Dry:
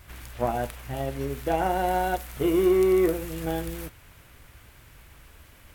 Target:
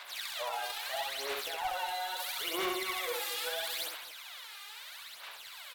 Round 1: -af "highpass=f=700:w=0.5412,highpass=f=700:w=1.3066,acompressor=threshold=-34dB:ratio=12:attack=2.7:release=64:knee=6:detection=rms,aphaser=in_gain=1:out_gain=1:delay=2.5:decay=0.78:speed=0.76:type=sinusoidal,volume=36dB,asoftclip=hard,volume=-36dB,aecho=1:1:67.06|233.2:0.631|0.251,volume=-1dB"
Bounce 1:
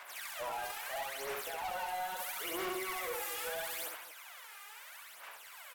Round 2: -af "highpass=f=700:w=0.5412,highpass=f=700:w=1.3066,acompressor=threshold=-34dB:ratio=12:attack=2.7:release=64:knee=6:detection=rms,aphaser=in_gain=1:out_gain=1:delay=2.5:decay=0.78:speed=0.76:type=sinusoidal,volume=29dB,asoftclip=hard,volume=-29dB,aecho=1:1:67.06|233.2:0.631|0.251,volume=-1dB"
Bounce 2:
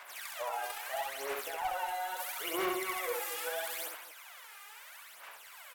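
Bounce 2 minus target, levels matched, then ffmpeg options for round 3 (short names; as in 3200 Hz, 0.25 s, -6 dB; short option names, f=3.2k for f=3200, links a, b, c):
4000 Hz band -7.5 dB
-af "highpass=f=700:w=0.5412,highpass=f=700:w=1.3066,equalizer=f=3.9k:t=o:w=0.81:g=13.5,acompressor=threshold=-34dB:ratio=12:attack=2.7:release=64:knee=6:detection=rms,aphaser=in_gain=1:out_gain=1:delay=2.5:decay=0.78:speed=0.76:type=sinusoidal,volume=29dB,asoftclip=hard,volume=-29dB,aecho=1:1:67.06|233.2:0.631|0.251,volume=-1dB"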